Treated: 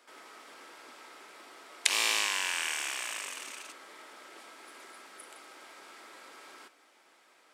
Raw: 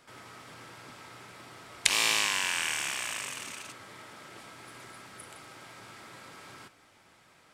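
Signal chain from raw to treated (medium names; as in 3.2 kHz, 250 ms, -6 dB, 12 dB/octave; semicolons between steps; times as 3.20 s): high-pass 290 Hz 24 dB/octave; trim -2 dB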